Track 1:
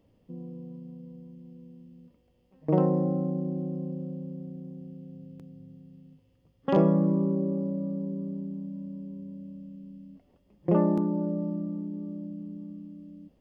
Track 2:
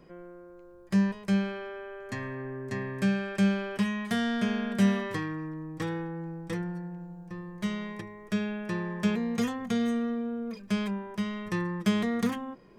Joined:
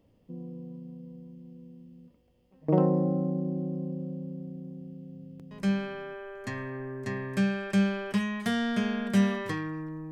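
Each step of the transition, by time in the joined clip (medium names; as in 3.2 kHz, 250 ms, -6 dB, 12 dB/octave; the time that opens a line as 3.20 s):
track 1
5.83 s: go over to track 2 from 1.48 s, crossfade 0.64 s logarithmic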